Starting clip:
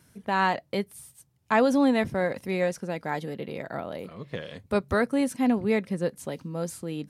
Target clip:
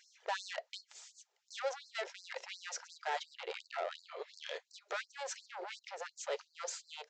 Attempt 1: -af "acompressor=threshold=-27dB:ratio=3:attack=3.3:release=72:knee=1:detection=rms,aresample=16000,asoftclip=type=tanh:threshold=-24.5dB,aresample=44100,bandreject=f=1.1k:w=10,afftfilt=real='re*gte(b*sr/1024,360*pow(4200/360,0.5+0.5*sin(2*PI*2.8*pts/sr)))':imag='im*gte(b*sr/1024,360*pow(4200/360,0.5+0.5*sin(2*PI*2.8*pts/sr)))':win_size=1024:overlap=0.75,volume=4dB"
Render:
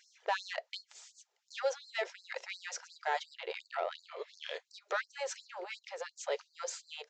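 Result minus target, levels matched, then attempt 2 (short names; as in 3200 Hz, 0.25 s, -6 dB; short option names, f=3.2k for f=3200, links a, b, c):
soft clip: distortion -9 dB
-af "acompressor=threshold=-27dB:ratio=3:attack=3.3:release=72:knee=1:detection=rms,aresample=16000,asoftclip=type=tanh:threshold=-33dB,aresample=44100,bandreject=f=1.1k:w=10,afftfilt=real='re*gte(b*sr/1024,360*pow(4200/360,0.5+0.5*sin(2*PI*2.8*pts/sr)))':imag='im*gte(b*sr/1024,360*pow(4200/360,0.5+0.5*sin(2*PI*2.8*pts/sr)))':win_size=1024:overlap=0.75,volume=4dB"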